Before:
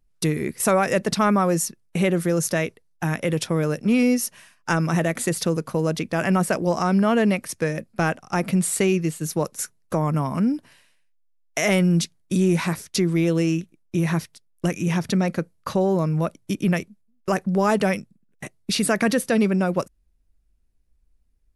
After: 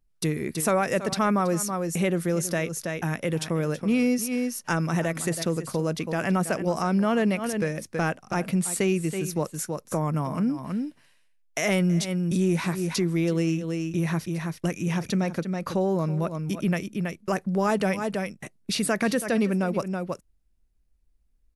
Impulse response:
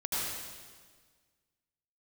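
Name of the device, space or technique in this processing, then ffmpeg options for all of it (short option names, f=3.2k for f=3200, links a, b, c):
ducked delay: -filter_complex "[0:a]asplit=3[a][b][c];[b]adelay=326,volume=-4dB[d];[c]apad=whole_len=965137[e];[d][e]sidechaincompress=threshold=-32dB:ratio=12:attack=16:release=101[f];[a][f]amix=inputs=2:normalize=0,volume=-4dB"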